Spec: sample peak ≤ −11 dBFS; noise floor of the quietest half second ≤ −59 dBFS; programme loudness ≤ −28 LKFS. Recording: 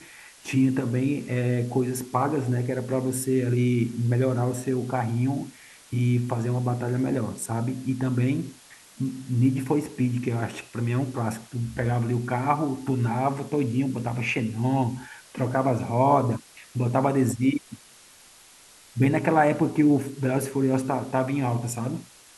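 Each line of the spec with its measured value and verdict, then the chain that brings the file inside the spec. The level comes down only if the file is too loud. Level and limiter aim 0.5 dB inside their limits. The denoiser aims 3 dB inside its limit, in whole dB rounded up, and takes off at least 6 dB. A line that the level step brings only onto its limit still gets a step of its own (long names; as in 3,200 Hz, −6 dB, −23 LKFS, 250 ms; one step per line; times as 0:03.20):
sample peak −7.0 dBFS: out of spec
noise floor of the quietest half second −52 dBFS: out of spec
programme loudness −25.5 LKFS: out of spec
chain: broadband denoise 7 dB, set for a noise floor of −52 dBFS
level −3 dB
brickwall limiter −11.5 dBFS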